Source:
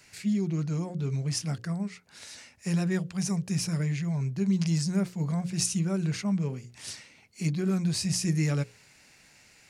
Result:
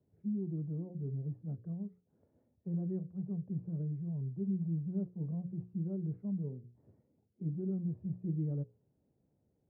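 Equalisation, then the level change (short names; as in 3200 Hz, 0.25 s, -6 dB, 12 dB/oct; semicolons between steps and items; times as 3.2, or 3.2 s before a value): HPF 75 Hz; ladder low-pass 600 Hz, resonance 25%; low shelf 120 Hz +8.5 dB; -6.0 dB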